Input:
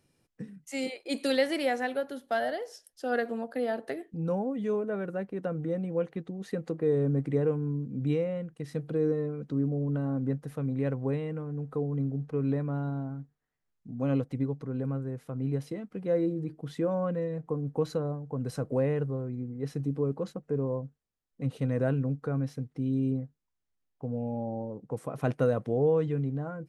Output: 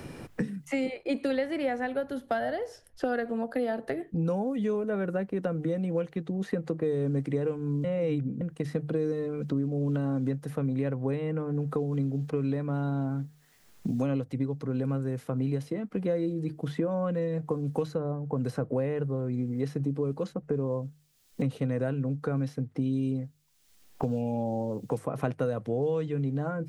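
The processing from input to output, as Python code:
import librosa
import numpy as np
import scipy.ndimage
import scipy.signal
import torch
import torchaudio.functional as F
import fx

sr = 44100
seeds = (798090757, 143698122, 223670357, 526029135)

y = fx.edit(x, sr, fx.reverse_span(start_s=7.84, length_s=0.57), tone=tone)
y = fx.hum_notches(y, sr, base_hz=50, count=3)
y = fx.band_squash(y, sr, depth_pct=100)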